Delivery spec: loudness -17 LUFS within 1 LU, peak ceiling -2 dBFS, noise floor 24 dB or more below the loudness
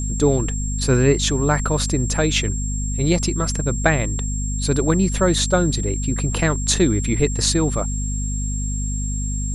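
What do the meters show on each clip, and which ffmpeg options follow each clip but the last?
hum 50 Hz; harmonics up to 250 Hz; hum level -21 dBFS; steady tone 7500 Hz; tone level -29 dBFS; loudness -20.5 LUFS; peak -1.5 dBFS; loudness target -17.0 LUFS
-> -af "bandreject=f=50:t=h:w=4,bandreject=f=100:t=h:w=4,bandreject=f=150:t=h:w=4,bandreject=f=200:t=h:w=4,bandreject=f=250:t=h:w=4"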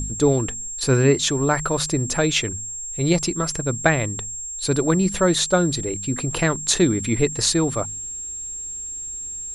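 hum none; steady tone 7500 Hz; tone level -29 dBFS
-> -af "bandreject=f=7.5k:w=30"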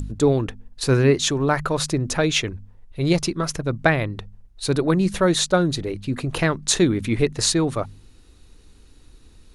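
steady tone none; loudness -21.5 LUFS; peak -2.0 dBFS; loudness target -17.0 LUFS
-> -af "volume=4.5dB,alimiter=limit=-2dB:level=0:latency=1"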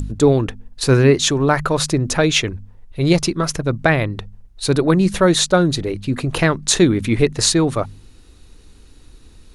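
loudness -17.0 LUFS; peak -2.0 dBFS; noise floor -46 dBFS

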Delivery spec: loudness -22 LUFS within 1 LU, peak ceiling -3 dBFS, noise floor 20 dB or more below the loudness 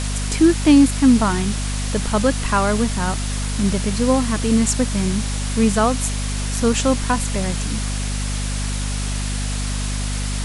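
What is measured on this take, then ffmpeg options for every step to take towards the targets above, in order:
hum 50 Hz; harmonics up to 250 Hz; hum level -21 dBFS; noise floor -23 dBFS; noise floor target -40 dBFS; loudness -19.5 LUFS; peak -1.5 dBFS; loudness target -22.0 LUFS
-> -af "bandreject=f=50:t=h:w=6,bandreject=f=100:t=h:w=6,bandreject=f=150:t=h:w=6,bandreject=f=200:t=h:w=6,bandreject=f=250:t=h:w=6"
-af "afftdn=nr=17:nf=-23"
-af "volume=-2.5dB"

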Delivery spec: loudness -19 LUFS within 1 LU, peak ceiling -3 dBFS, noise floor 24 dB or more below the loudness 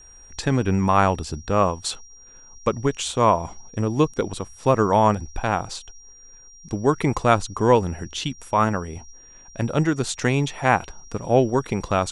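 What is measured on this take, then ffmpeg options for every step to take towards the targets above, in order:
steady tone 5700 Hz; tone level -46 dBFS; loudness -22.0 LUFS; peak -3.0 dBFS; loudness target -19.0 LUFS
-> -af "bandreject=f=5.7k:w=30"
-af "volume=3dB,alimiter=limit=-3dB:level=0:latency=1"

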